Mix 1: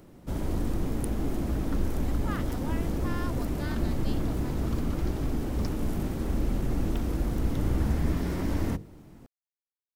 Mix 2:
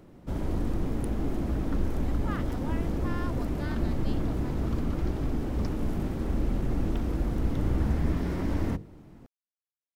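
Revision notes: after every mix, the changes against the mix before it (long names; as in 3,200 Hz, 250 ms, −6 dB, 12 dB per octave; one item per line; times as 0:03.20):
master: add high-shelf EQ 5,300 Hz −9.5 dB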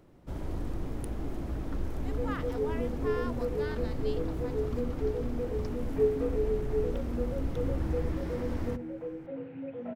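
first sound −5.0 dB
second sound: unmuted
master: add parametric band 210 Hz −4.5 dB 0.75 octaves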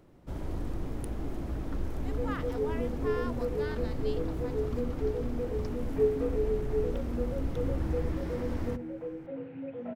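nothing changed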